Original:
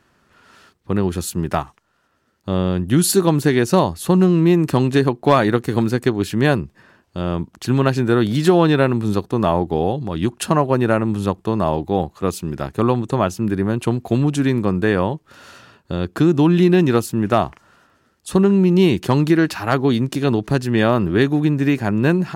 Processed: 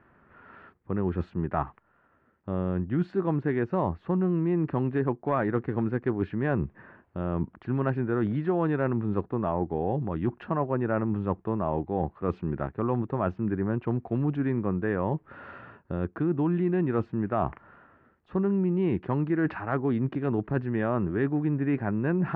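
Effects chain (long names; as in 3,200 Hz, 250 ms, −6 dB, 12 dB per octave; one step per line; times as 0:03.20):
low-pass filter 2,000 Hz 24 dB per octave
reversed playback
downward compressor 4 to 1, threshold −25 dBFS, peak gain reduction 14.5 dB
reversed playback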